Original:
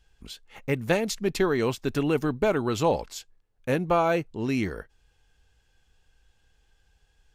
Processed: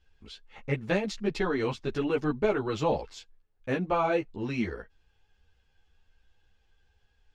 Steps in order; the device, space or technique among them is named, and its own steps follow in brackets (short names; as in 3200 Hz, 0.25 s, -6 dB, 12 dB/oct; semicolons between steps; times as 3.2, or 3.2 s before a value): string-machine ensemble chorus (ensemble effect; LPF 4700 Hz 12 dB/oct)